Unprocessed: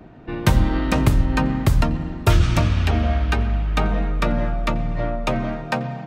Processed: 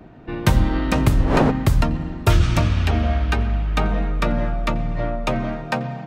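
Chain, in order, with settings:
0:01.05–0:01.50: wind on the microphone 590 Hz −20 dBFS

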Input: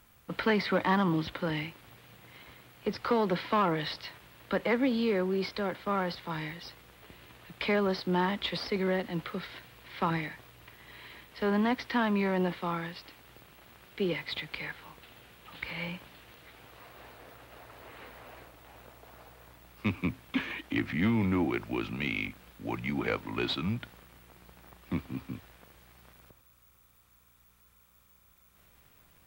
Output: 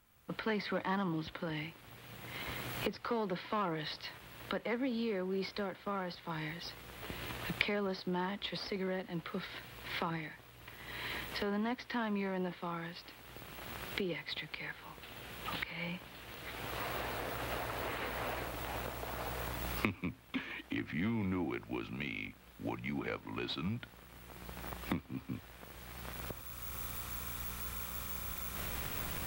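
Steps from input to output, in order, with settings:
camcorder AGC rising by 18 dB per second
level −8.5 dB

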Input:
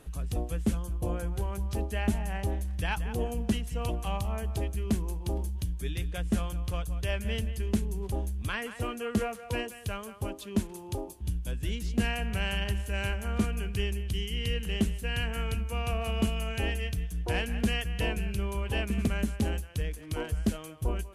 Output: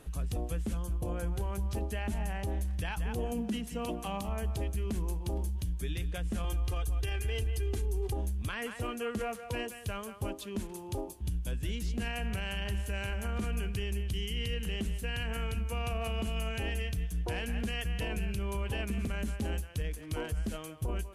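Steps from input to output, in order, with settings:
0:03.32–0:04.29: low shelf with overshoot 160 Hz −9 dB, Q 3
0:06.44–0:08.17: comb filter 2.5 ms, depth 85%
brickwall limiter −25.5 dBFS, peak gain reduction 14 dB

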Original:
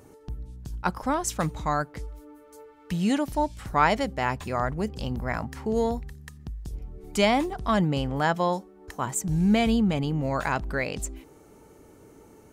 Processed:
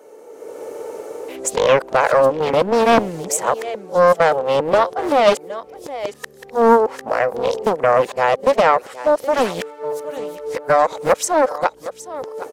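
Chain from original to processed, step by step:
played backwards from end to start
high-pass with resonance 500 Hz, resonance Q 4.9
automatic gain control gain up to 13 dB
single-tap delay 766 ms −18.5 dB
in parallel at +2.5 dB: downward compressor, threshold −22 dBFS, peak gain reduction 16 dB
on the sum: highs frequency-modulated by the lows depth 0.65 ms
level −3.5 dB

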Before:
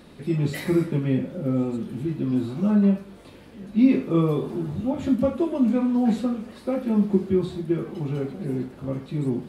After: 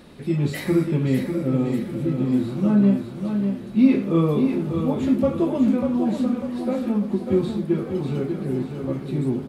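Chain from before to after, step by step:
0:05.74–0:07.28: downward compressor 3 to 1, threshold −22 dBFS, peak gain reduction 6.5 dB
on a send: repeating echo 595 ms, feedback 44%, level −6.5 dB
on the sum: level +1.5 dB

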